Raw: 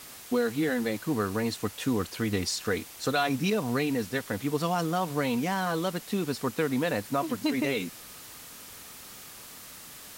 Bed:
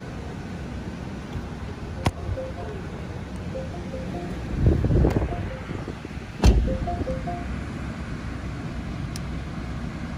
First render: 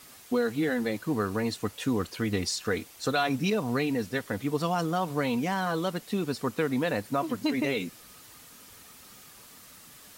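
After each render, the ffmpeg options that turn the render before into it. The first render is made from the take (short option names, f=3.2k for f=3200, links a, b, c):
-af "afftdn=nr=6:nf=-46"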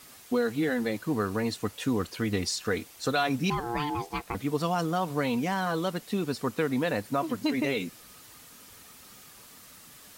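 -filter_complex "[0:a]asettb=1/sr,asplit=3[a][b][c];[a]atrim=end=3.504[d];[b]atrim=start=3.5:end=4.35,asetpts=PTS-STARTPTS,afade=t=in:d=0.004:c=qsin,afade=t=out:st=0.846:d=0.004:c=qsin,aeval=exprs='val(0)*sin(2*PI*590*n/s)':c=same[e];[c]atrim=start=4.346[f];[d][e]acrossfade=d=0.004:c1=hsin:c2=qsin[g];[g][f]acrossfade=d=0.004:c1=qsin:c2=hsin"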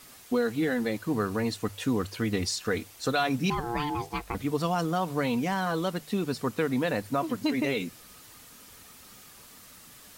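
-af "lowshelf=f=76:g=6,bandreject=f=50:t=h:w=6,bandreject=f=100:t=h:w=6,bandreject=f=150:t=h:w=6"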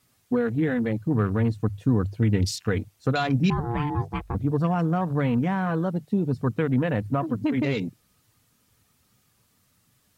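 -af "afwtdn=0.0141,equalizer=f=110:t=o:w=1.6:g=13"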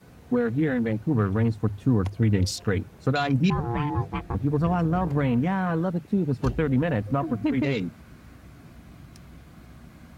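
-filter_complex "[1:a]volume=-15.5dB[a];[0:a][a]amix=inputs=2:normalize=0"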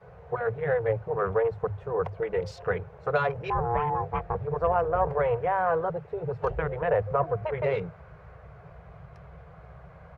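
-af "afftfilt=real='re*lt(hypot(re,im),0.447)':imag='im*lt(hypot(re,im),0.447)':win_size=1024:overlap=0.75,firequalizer=gain_entry='entry(160,0);entry(250,-30);entry(440,8);entry(3700,-14);entry(9600,-27)':delay=0.05:min_phase=1"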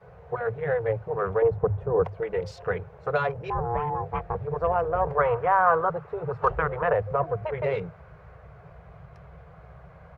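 -filter_complex "[0:a]asettb=1/sr,asplit=3[a][b][c];[a]atrim=end=1.424[d];[b]atrim=start=1.42:end=2.04,asetpts=PTS-STARTPTS,afade=t=in:d=0.004:c=qsin,afade=t=out:st=0.616:d=0.004:c=qsin,tiltshelf=f=1.2k:g=7.5[e];[c]atrim=start=2.036[f];[d][e]acrossfade=d=0.004:c1=hsin:c2=qsin[g];[g][f]acrossfade=d=0.004:c1=qsin:c2=hsin,asettb=1/sr,asplit=3[h][i][j];[h]atrim=end=3.304[k];[i]atrim=start=3.3:end=4.06,asetpts=PTS-STARTPTS,afade=t=in:d=0.004:c=qsin,afade=t=out:st=0.756:d=0.004:c=qsin,equalizer=f=2.5k:t=o:w=2.3:g=-4[l];[j]atrim=start=4.056[m];[k][l]acrossfade=d=0.004:c1=hsin:c2=qsin[n];[n][m]acrossfade=d=0.004:c1=qsin:c2=hsin,asettb=1/sr,asplit=3[o][p][q];[o]atrim=end=5.184[r];[p]atrim=start=5.18:end=6.93,asetpts=PTS-STARTPTS,afade=t=in:d=0.004:c=qsin,afade=t=out:st=1.746:d=0.004:c=qsin,equalizer=f=1.2k:t=o:w=0.84:g=11.5[s];[q]atrim=start=6.926[t];[r][s]acrossfade=d=0.004:c1=hsin:c2=qsin[u];[u][t]acrossfade=d=0.004:c1=qsin:c2=hsin"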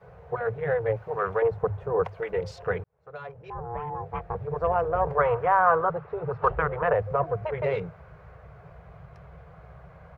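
-filter_complex "[0:a]asettb=1/sr,asplit=3[a][b][c];[a]atrim=end=0.964[d];[b]atrim=start=0.96:end=2.31,asetpts=PTS-STARTPTS,afade=t=in:d=0.004:c=qsin,afade=t=out:st=1.346:d=0.004:c=qsin,tiltshelf=f=740:g=-5[e];[c]atrim=start=2.306[f];[d][e]acrossfade=d=0.004:c1=hsin:c2=qsin[g];[g][f]acrossfade=d=0.004:c1=qsin:c2=hsin,asettb=1/sr,asplit=3[h][i][j];[h]atrim=end=5.604[k];[i]atrim=start=5.6:end=6.98,asetpts=PTS-STARTPTS,afade=t=in:d=0.004:c=qsin,afade=t=out:st=1.376:d=0.004:c=qsin,lowpass=4.5k[l];[j]atrim=start=6.976[m];[k][l]acrossfade=d=0.004:c1=hsin:c2=qsin[n];[n][m]acrossfade=d=0.004:c1=qsin:c2=hsin,asplit=2[o][p];[o]atrim=end=2.84,asetpts=PTS-STARTPTS,afade=t=out:st=2.836:d=0.004:c=hsin[q];[p]atrim=start=2.84,asetpts=PTS-STARTPTS,afade=t=in:d=1.91[r];[q][r]concat=n=2:v=0:a=1"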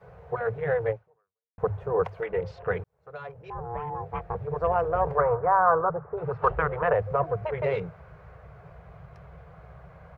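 -filter_complex "[0:a]asettb=1/sr,asplit=3[a][b][c];[a]atrim=end=2.264[d];[b]atrim=start=2.26:end=2.7,asetpts=PTS-STARTPTS,afade=t=in:d=0.004:c=qsin,afade=t=out:st=0.436:d=0.004:c=qsin,lowpass=2.9k[e];[c]atrim=start=2.696[f];[d][e]acrossfade=d=0.004:c1=hsin:c2=qsin[g];[g][f]acrossfade=d=0.004:c1=qsin:c2=hsin,asplit=3[h][i][j];[h]afade=t=out:st=5.2:d=0.02[k];[i]lowpass=f=1.5k:w=0.5412,lowpass=f=1.5k:w=1.3066,afade=t=in:st=5.2:d=0.02,afade=t=out:st=6.16:d=0.02[l];[j]afade=t=in:st=6.16:d=0.02[m];[k][l][m]amix=inputs=3:normalize=0,asplit=2[n][o];[n]atrim=end=1.58,asetpts=PTS-STARTPTS,afade=t=out:st=0.89:d=0.69:c=exp[p];[o]atrim=start=1.58,asetpts=PTS-STARTPTS,afade=t=in:d=0.004:c=hsin[q];[p][q]concat=n=2:v=0:a=1"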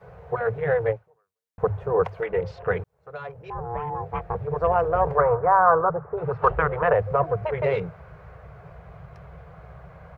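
-af "volume=3.5dB"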